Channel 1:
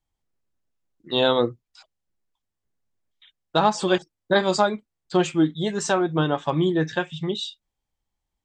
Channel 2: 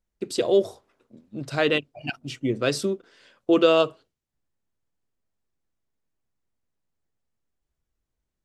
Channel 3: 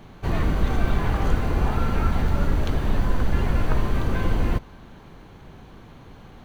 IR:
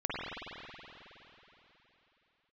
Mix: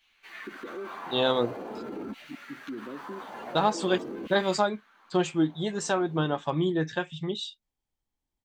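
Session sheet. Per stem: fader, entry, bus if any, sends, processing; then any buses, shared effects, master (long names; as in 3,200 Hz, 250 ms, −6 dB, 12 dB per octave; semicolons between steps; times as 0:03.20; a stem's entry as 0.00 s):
−5.0 dB, 0.00 s, no bus, no send, no processing
−8.5 dB, 0.25 s, bus A, no send, spectral tilt +2.5 dB per octave; downward compressor 2 to 1, threshold −27 dBFS, peak gain reduction 7.5 dB; resonant band-pass 290 Hz, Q 1.7; automatic ducking −6 dB, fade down 0.30 s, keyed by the first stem
−9.0 dB, 0.00 s, bus A, no send, auto-filter high-pass saw down 0.47 Hz 290–2,800 Hz; string-ensemble chorus
bus A: 0.0 dB, parametric band 240 Hz +13 dB 1.8 octaves; brickwall limiter −30 dBFS, peak gain reduction 10 dB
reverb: not used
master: no processing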